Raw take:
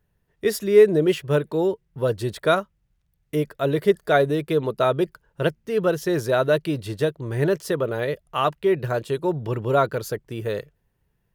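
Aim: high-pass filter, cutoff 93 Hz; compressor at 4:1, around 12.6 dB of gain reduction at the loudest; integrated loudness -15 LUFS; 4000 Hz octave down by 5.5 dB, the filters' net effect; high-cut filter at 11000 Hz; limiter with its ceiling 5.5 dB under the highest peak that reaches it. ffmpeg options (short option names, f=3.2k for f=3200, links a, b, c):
-af "highpass=93,lowpass=11k,equalizer=f=4k:t=o:g=-7,acompressor=threshold=-24dB:ratio=4,volume=15.5dB,alimiter=limit=-4dB:level=0:latency=1"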